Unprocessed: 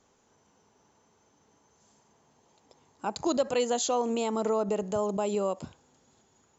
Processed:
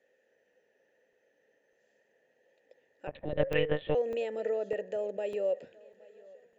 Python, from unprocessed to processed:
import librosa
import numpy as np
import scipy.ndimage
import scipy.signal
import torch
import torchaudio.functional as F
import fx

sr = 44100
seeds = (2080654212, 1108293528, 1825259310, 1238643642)

y = fx.vowel_filter(x, sr, vowel='e')
y = fx.peak_eq(y, sr, hz=1800.0, db=10.0, octaves=0.26)
y = fx.echo_feedback(y, sr, ms=820, feedback_pct=49, wet_db=-24)
y = fx.lpc_monotone(y, sr, seeds[0], pitch_hz=150.0, order=10, at=(3.07, 3.95))
y = fx.buffer_crackle(y, sr, first_s=0.53, period_s=0.6, block=128, kind='zero')
y = y * 10.0 ** (6.5 / 20.0)